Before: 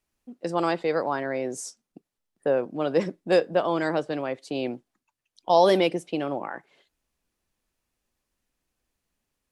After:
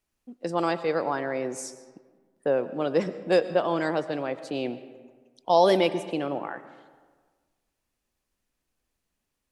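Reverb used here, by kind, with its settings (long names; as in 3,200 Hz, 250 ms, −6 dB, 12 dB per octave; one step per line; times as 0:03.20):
comb and all-pass reverb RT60 1.5 s, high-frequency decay 0.55×, pre-delay 70 ms, DRR 13.5 dB
level −1 dB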